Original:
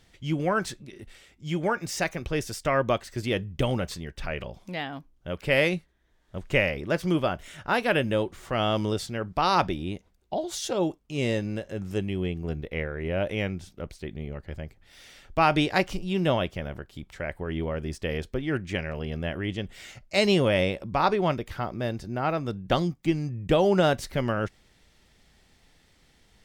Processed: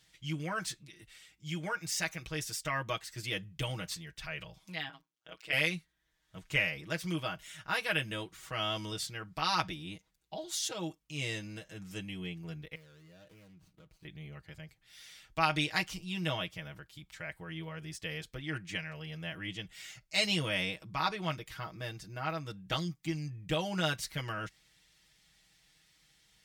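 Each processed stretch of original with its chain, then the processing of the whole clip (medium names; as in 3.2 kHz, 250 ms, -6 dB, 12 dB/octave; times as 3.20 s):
4.89–5.53 s: high-pass 310 Hz + peaking EQ 12 kHz -11.5 dB 0.52 oct + AM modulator 120 Hz, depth 100%
12.75–14.05 s: median filter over 25 samples + band-stop 850 Hz, Q 18 + compression, threshold -41 dBFS
whole clip: high-pass 47 Hz; amplifier tone stack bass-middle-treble 5-5-5; comb 6.3 ms, depth 88%; trim +3 dB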